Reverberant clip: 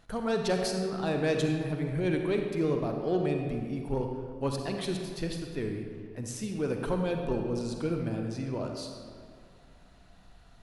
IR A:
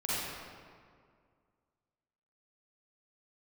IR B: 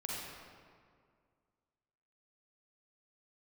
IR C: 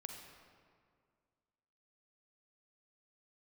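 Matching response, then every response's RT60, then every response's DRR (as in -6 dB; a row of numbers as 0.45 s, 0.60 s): C; 2.1 s, 2.1 s, 2.0 s; -9.5 dB, -4.5 dB, 3.0 dB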